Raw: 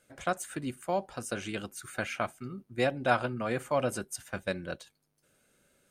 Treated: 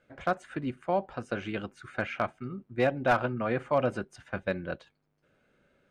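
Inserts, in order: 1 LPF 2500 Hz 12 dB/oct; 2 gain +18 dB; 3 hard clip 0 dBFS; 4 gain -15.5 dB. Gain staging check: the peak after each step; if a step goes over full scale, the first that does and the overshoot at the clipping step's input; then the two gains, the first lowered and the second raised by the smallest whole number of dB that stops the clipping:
-10.0, +8.0, 0.0, -15.5 dBFS; step 2, 8.0 dB; step 2 +10 dB, step 4 -7.5 dB

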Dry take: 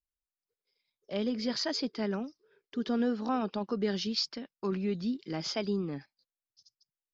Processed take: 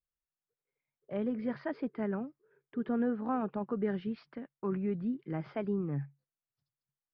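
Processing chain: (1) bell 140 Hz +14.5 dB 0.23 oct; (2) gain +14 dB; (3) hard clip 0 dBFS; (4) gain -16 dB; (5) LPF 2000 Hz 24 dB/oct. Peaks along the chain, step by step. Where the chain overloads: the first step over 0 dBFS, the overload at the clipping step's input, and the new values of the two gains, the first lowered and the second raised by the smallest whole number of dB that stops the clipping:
-17.5, -3.5, -3.5, -19.5, -20.5 dBFS; no overload

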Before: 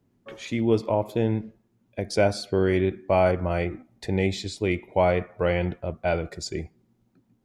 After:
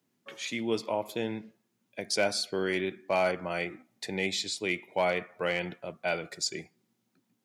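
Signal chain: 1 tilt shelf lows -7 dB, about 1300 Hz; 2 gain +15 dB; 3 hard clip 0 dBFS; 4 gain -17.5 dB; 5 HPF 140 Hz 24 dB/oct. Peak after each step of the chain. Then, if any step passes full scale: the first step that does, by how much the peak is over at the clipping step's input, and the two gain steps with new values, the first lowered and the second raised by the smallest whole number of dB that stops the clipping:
-11.5, +3.5, 0.0, -17.5, -14.5 dBFS; step 2, 3.5 dB; step 2 +11 dB, step 4 -13.5 dB

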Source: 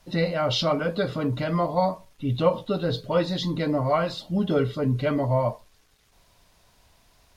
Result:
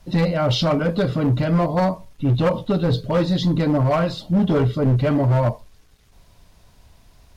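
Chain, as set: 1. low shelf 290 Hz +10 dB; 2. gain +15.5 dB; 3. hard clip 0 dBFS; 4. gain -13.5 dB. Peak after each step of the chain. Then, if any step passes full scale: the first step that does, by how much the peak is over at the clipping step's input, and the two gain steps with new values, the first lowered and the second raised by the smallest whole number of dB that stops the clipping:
-5.5, +10.0, 0.0, -13.5 dBFS; step 2, 10.0 dB; step 2 +5.5 dB, step 4 -3.5 dB

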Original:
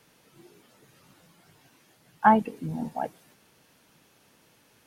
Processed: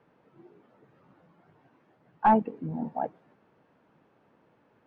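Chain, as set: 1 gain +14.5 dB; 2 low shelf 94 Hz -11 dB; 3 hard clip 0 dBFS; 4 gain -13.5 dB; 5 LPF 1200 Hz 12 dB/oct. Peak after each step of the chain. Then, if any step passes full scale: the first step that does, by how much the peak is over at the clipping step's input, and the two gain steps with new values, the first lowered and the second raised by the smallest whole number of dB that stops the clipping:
+9.5, +9.5, 0.0, -13.5, -13.0 dBFS; step 1, 9.5 dB; step 1 +4.5 dB, step 4 -3.5 dB

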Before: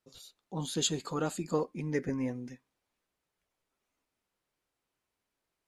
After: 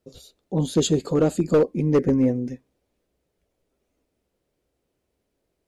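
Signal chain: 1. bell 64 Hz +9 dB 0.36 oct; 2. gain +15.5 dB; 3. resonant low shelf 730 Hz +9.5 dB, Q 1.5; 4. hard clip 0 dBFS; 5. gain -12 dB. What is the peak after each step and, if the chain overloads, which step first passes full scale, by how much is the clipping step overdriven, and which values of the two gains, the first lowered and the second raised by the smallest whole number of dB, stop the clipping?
-16.5, -1.0, +8.0, 0.0, -12.0 dBFS; step 3, 8.0 dB; step 2 +7.5 dB, step 5 -4 dB

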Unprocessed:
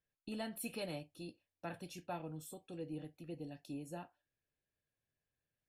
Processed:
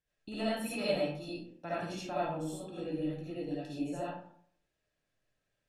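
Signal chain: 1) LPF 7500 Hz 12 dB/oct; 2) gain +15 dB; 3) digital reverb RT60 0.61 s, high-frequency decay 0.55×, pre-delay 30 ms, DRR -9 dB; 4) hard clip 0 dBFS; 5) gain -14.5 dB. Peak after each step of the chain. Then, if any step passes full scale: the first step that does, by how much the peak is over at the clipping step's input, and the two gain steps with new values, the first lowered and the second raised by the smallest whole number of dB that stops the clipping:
-30.0, -15.0, -4.5, -4.5, -19.0 dBFS; no overload

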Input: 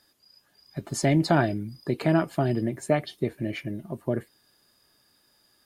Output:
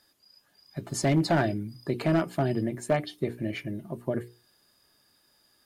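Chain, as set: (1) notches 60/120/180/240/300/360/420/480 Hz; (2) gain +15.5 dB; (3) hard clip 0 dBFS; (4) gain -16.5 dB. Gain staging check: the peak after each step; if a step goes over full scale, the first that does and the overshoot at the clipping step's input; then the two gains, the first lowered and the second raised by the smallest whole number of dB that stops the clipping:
-7.5, +8.0, 0.0, -16.5 dBFS; step 2, 8.0 dB; step 2 +7.5 dB, step 4 -8.5 dB

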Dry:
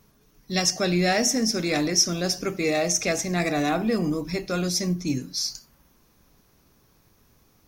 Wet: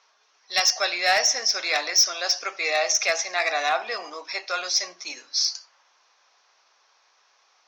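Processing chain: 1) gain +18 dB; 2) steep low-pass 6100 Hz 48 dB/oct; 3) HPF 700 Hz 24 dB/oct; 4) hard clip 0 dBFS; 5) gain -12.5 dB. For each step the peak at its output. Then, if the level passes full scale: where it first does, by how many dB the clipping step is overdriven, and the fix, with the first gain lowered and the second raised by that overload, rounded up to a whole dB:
+11.5, +10.0, +10.0, 0.0, -12.5 dBFS; step 1, 10.0 dB; step 1 +8 dB, step 5 -2.5 dB

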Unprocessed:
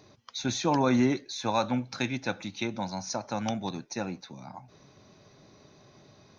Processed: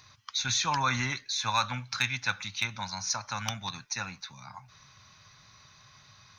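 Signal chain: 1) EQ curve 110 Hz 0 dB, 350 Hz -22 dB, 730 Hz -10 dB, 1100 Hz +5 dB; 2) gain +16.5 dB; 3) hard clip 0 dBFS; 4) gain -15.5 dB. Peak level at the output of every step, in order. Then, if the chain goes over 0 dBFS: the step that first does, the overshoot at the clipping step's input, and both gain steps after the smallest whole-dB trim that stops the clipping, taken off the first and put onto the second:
-12.5, +4.0, 0.0, -15.5 dBFS; step 2, 4.0 dB; step 2 +12.5 dB, step 4 -11.5 dB

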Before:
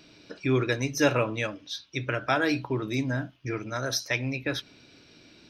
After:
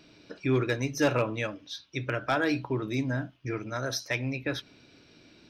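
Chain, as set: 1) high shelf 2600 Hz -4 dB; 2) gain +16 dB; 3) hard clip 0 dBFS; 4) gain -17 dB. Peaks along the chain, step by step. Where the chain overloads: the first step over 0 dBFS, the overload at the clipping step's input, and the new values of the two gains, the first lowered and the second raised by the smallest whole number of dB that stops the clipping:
-10.5, +5.5, 0.0, -17.0 dBFS; step 2, 5.5 dB; step 2 +10 dB, step 4 -11 dB

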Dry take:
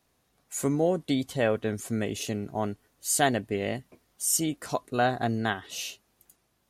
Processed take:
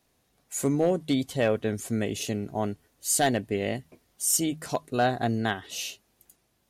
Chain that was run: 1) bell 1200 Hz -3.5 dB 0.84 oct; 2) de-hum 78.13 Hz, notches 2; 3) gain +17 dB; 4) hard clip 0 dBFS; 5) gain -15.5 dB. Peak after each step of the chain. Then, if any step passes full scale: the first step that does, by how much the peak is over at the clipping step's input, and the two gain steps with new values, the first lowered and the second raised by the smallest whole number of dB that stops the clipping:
-9.0, -9.0, +8.0, 0.0, -15.5 dBFS; step 3, 8.0 dB; step 3 +9 dB, step 5 -7.5 dB

